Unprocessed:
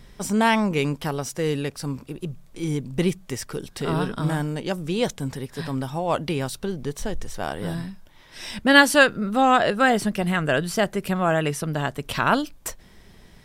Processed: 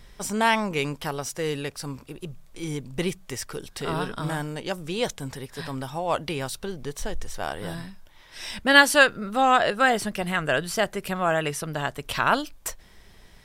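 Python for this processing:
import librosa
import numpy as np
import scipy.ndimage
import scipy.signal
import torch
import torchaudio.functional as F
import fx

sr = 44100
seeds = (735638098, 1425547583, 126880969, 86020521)

y = fx.peak_eq(x, sr, hz=200.0, db=-7.0, octaves=2.2)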